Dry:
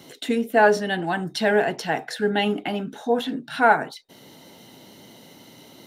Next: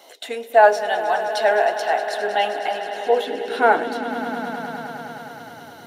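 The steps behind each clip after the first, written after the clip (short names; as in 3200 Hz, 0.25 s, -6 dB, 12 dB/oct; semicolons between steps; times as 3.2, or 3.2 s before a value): swelling echo 0.104 s, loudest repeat 5, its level -15 dB; high-pass sweep 660 Hz -> 91 Hz, 2.85–5.55; gain -1 dB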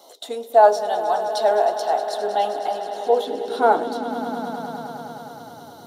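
band shelf 2100 Hz -13.5 dB 1.1 oct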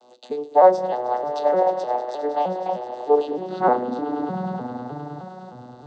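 arpeggiated vocoder minor triad, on B2, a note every 0.306 s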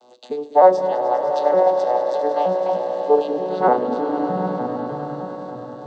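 swelling echo 99 ms, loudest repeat 5, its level -16 dB; gain +1.5 dB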